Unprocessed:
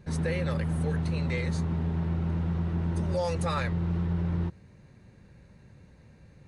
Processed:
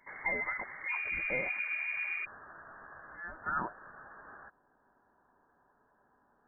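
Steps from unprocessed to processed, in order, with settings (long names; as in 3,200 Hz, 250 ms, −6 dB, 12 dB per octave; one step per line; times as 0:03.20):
Butterworth high-pass 450 Hz 48 dB per octave, from 0:00.88 180 Hz, from 0:02.24 960 Hz
gate on every frequency bin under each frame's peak −30 dB strong
voice inversion scrambler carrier 2,600 Hz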